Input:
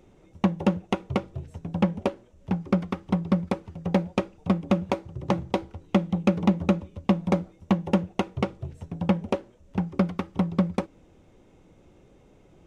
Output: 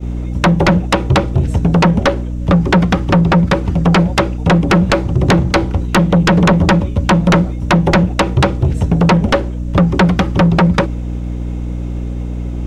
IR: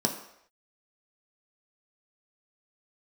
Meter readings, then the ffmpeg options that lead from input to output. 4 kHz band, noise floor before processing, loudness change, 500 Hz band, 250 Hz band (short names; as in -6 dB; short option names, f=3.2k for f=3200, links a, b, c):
+19.0 dB, -57 dBFS, +14.0 dB, +13.5 dB, +12.0 dB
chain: -filter_complex "[0:a]acrossover=split=4500[a][b];[b]acompressor=threshold=-56dB:ratio=4:attack=1:release=60[c];[a][c]amix=inputs=2:normalize=0,aeval=exprs='val(0)+0.00891*(sin(2*PI*60*n/s)+sin(2*PI*2*60*n/s)/2+sin(2*PI*3*60*n/s)/3+sin(2*PI*4*60*n/s)/4+sin(2*PI*5*60*n/s)/5)':c=same,asplit=2[d][e];[e]acompressor=threshold=-30dB:ratio=6,volume=-0.5dB[f];[d][f]amix=inputs=2:normalize=0,agate=range=-33dB:threshold=-33dB:ratio=3:detection=peak,aeval=exprs='0.531*sin(PI/2*5.62*val(0)/0.531)':c=same"